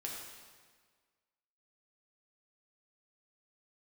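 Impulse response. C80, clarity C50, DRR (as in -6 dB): 3.0 dB, 1.0 dB, -3.0 dB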